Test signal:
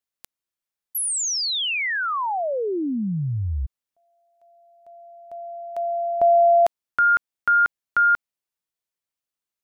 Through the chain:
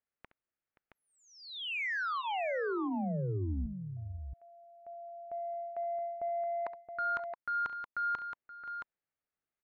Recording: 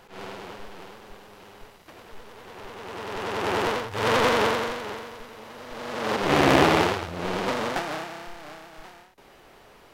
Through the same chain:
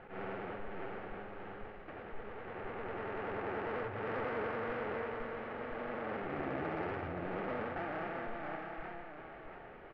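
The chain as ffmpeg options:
-af "lowpass=f=2200:w=0.5412,lowpass=f=2200:w=1.3066,bandreject=f=1000:w=6.4,areverse,acompressor=threshold=0.0224:ratio=6:attack=1.3:release=385:knee=6:detection=peak,areverse,asoftclip=type=tanh:threshold=0.0631,aecho=1:1:68|526|671:0.188|0.168|0.447"

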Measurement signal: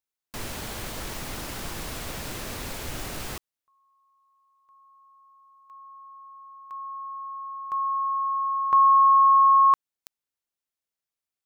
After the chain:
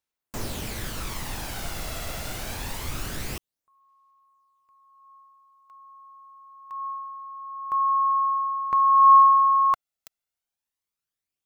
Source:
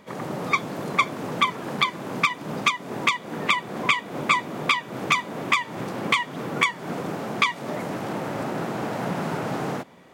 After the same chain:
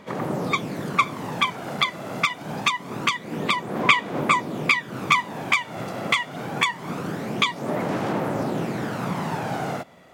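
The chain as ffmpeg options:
-af "aphaser=in_gain=1:out_gain=1:delay=1.5:decay=0.42:speed=0.25:type=sinusoidal"

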